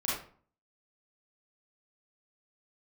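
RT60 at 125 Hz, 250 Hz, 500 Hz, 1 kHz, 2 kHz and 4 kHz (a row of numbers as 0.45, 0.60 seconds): 0.60, 0.55, 0.45, 0.45, 0.40, 0.30 seconds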